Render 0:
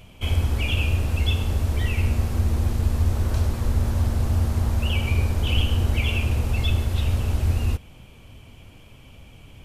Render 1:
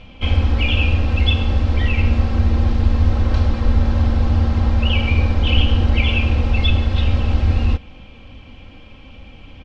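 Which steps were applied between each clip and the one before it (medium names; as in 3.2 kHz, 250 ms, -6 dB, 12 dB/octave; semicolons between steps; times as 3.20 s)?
low-pass 4.6 kHz 24 dB/octave; comb 3.8 ms, depth 55%; trim +5.5 dB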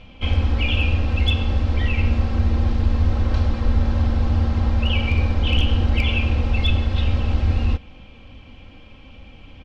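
hard clipper -6.5 dBFS, distortion -29 dB; trim -3 dB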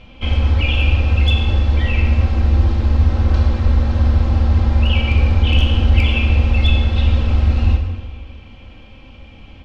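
plate-style reverb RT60 1.6 s, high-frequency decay 0.8×, DRR 3.5 dB; trim +1.5 dB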